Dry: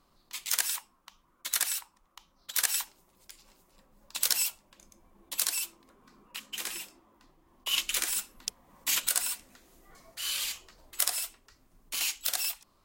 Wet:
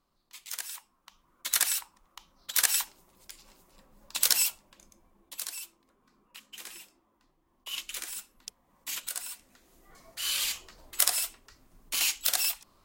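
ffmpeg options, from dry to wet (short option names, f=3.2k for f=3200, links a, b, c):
-af "volume=14.5dB,afade=t=in:st=0.7:d=0.89:silence=0.251189,afade=t=out:st=4.41:d=0.97:silence=0.281838,afade=t=in:st=9.27:d=1.25:silence=0.266073"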